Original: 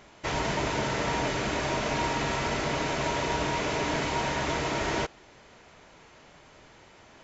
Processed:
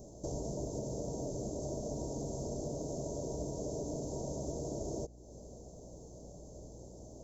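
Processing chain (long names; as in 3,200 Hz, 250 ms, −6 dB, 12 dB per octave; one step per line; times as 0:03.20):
loose part that buzzes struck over −34 dBFS, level −33 dBFS
Chebyshev band-stop filter 600–6,300 Hz, order 3
downward compressor 3 to 1, threshold −46 dBFS, peak gain reduction 14 dB
floating-point word with a short mantissa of 6 bits
mains hum 60 Hz, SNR 15 dB
level +5.5 dB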